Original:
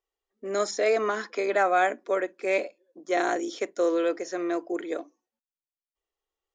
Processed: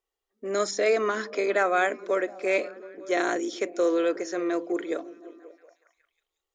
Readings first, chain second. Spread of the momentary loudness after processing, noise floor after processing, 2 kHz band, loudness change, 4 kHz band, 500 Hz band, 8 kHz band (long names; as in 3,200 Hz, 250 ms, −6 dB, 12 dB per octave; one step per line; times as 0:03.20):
11 LU, below −85 dBFS, +1.5 dB, +0.5 dB, +1.5 dB, +0.5 dB, +1.5 dB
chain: dynamic equaliser 790 Hz, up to −6 dB, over −39 dBFS, Q 2.8
on a send: echo through a band-pass that steps 180 ms, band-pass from 170 Hz, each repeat 0.7 octaves, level −11 dB
on the sum: level +1.5 dB